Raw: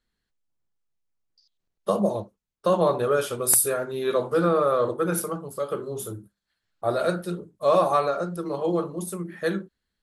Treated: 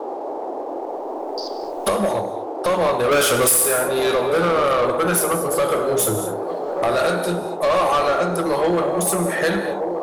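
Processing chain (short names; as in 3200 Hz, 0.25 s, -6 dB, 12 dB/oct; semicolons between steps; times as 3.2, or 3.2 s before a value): recorder AGC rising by 14 dB/s; in parallel at +2 dB: limiter -14 dBFS, peak gain reduction 11.5 dB; on the sum: low shelf 430 Hz -10.5 dB; 3.11–3.52 sample leveller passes 2; on a send: band-limited delay 1.179 s, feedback 49%, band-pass 440 Hz, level -10 dB; on the sum: non-linear reverb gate 0.26 s flat, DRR 9 dB; band noise 300–850 Hz -32 dBFS; soft clip -12.5 dBFS, distortion -13 dB; sample leveller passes 1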